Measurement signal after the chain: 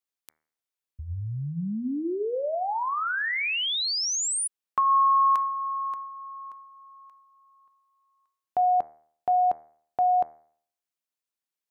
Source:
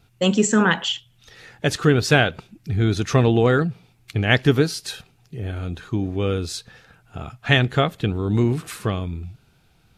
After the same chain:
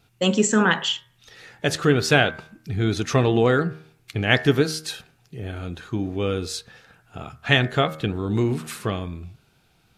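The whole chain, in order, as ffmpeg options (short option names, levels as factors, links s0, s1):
-af "lowshelf=f=120:g=-7.5,bandreject=f=78.1:t=h:w=4,bandreject=f=156.2:t=h:w=4,bandreject=f=234.3:t=h:w=4,bandreject=f=312.4:t=h:w=4,bandreject=f=390.5:t=h:w=4,bandreject=f=468.6:t=h:w=4,bandreject=f=546.7:t=h:w=4,bandreject=f=624.8:t=h:w=4,bandreject=f=702.9:t=h:w=4,bandreject=f=781:t=h:w=4,bandreject=f=859.1:t=h:w=4,bandreject=f=937.2:t=h:w=4,bandreject=f=1015.3:t=h:w=4,bandreject=f=1093.4:t=h:w=4,bandreject=f=1171.5:t=h:w=4,bandreject=f=1249.6:t=h:w=4,bandreject=f=1327.7:t=h:w=4,bandreject=f=1405.8:t=h:w=4,bandreject=f=1483.9:t=h:w=4,bandreject=f=1562:t=h:w=4,bandreject=f=1640.1:t=h:w=4,bandreject=f=1718.2:t=h:w=4,bandreject=f=1796.3:t=h:w=4,bandreject=f=1874.4:t=h:w=4,bandreject=f=1952.5:t=h:w=4,bandreject=f=2030.6:t=h:w=4,bandreject=f=2108.7:t=h:w=4,bandreject=f=2186.8:t=h:w=4,bandreject=f=2264.9:t=h:w=4"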